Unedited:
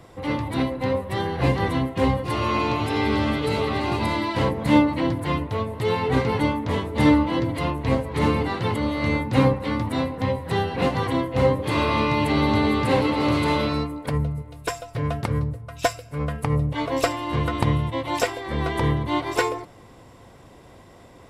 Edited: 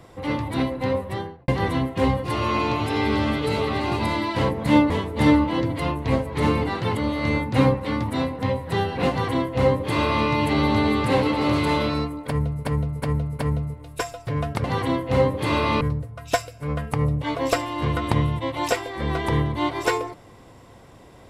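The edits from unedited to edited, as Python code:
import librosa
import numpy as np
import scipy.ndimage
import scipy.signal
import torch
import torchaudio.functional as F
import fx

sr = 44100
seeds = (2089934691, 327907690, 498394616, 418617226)

y = fx.studio_fade_out(x, sr, start_s=1.01, length_s=0.47)
y = fx.edit(y, sr, fx.cut(start_s=4.9, length_s=1.79),
    fx.duplicate(start_s=10.89, length_s=1.17, to_s=15.32),
    fx.repeat(start_s=14.07, length_s=0.37, count=4), tone=tone)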